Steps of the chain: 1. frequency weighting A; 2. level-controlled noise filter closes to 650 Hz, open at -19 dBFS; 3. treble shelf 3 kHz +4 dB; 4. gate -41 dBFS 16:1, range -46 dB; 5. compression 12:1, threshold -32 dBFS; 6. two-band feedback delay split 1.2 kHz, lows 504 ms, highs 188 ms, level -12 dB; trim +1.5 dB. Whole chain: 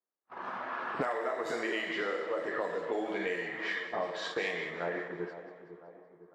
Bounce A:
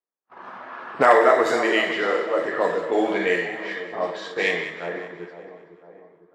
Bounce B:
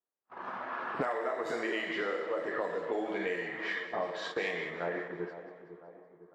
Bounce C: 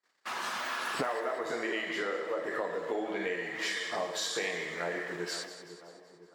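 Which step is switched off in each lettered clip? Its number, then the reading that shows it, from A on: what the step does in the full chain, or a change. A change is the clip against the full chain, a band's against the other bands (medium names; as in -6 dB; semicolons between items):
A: 5, mean gain reduction 7.5 dB; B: 3, 4 kHz band -2.0 dB; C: 2, 8 kHz band +14.0 dB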